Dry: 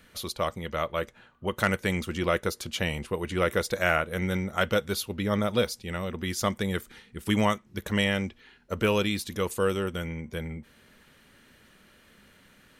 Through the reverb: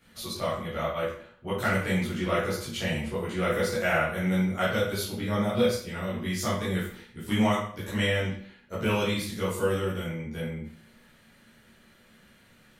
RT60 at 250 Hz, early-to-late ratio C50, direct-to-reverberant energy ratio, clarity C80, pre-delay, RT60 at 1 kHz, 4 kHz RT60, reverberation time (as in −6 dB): 0.60 s, 3.0 dB, −10.0 dB, 7.5 dB, 9 ms, 0.55 s, 0.45 s, 0.55 s